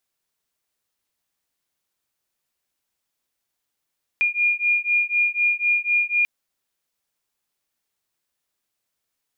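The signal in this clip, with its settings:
two tones that beat 2,420 Hz, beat 4 Hz, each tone −21 dBFS 2.04 s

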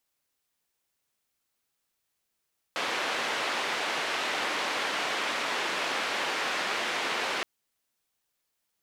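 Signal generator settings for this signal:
band-limited noise 360–2,600 Hz, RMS −30.5 dBFS 4.67 s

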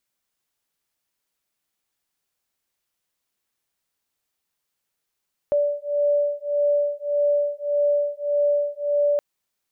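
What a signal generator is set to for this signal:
two tones that beat 580 Hz, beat 1.7 Hz, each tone −22 dBFS 3.67 s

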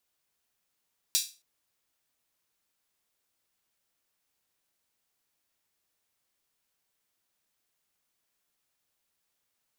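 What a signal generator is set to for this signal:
open synth hi-hat length 0.27 s, high-pass 4,200 Hz, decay 0.31 s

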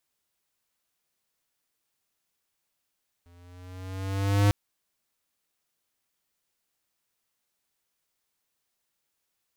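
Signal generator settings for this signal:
pitch glide with a swell square, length 1.25 s, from 86.1 Hz, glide +3 semitones, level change +37.5 dB, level −18.5 dB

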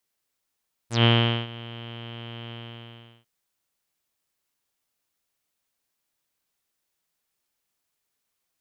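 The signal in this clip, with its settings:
subtractive voice saw A#2 24 dB per octave, low-pass 3,100 Hz, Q 10, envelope 2 octaves, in 0.08 s, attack 138 ms, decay 0.43 s, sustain −21.5 dB, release 0.74 s, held 1.61 s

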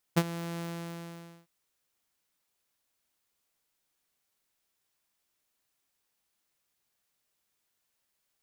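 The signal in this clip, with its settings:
note with an ADSR envelope saw 169 Hz, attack 17 ms, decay 50 ms, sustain −16 dB, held 0.44 s, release 866 ms −16 dBFS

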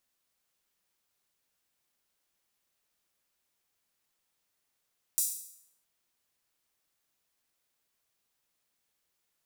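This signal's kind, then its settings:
open synth hi-hat length 0.66 s, high-pass 7,600 Hz, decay 0.70 s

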